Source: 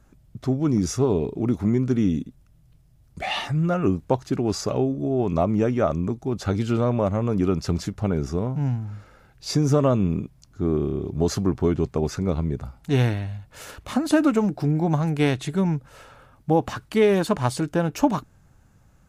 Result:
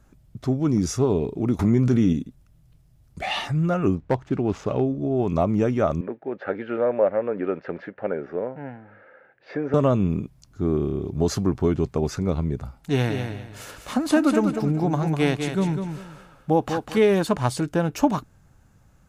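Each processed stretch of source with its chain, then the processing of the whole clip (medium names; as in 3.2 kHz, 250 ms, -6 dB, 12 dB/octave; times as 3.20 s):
1.59–2.13 s: doubling 17 ms -13 dB + level flattener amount 70%
3.95–5.15 s: median filter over 9 samples + Bessel low-pass 4.9 kHz + hard clipper -13 dBFS
6.01–9.74 s: block-companded coder 7-bit + cabinet simulation 380–2300 Hz, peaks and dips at 530 Hz +9 dB, 1.1 kHz -7 dB, 1.7 kHz +9 dB
12.75–16.98 s: peaking EQ 84 Hz -14 dB 0.67 oct + feedback delay 199 ms, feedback 25%, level -7 dB
whole clip: none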